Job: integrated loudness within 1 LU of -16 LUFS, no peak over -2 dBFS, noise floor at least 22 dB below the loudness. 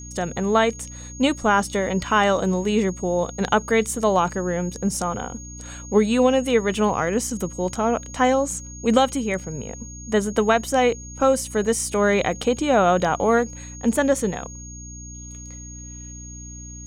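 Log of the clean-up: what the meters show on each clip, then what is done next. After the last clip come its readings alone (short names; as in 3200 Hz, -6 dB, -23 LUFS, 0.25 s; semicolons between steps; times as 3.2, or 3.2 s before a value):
hum 60 Hz; harmonics up to 300 Hz; hum level -36 dBFS; steady tone 6600 Hz; tone level -39 dBFS; loudness -21.5 LUFS; peak -3.5 dBFS; loudness target -16.0 LUFS
-> de-hum 60 Hz, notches 5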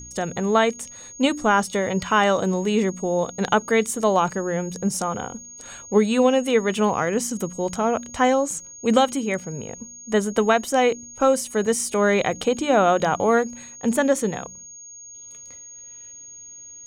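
hum none; steady tone 6600 Hz; tone level -39 dBFS
-> notch 6600 Hz, Q 30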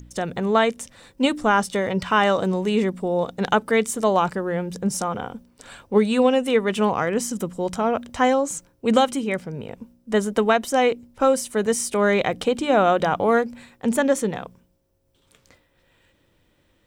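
steady tone none; loudness -22.0 LUFS; peak -4.0 dBFS; loudness target -16.0 LUFS
-> gain +6 dB; limiter -2 dBFS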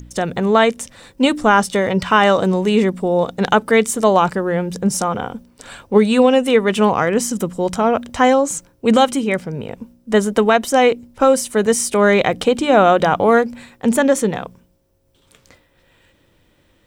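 loudness -16.0 LUFS; peak -2.0 dBFS; noise floor -58 dBFS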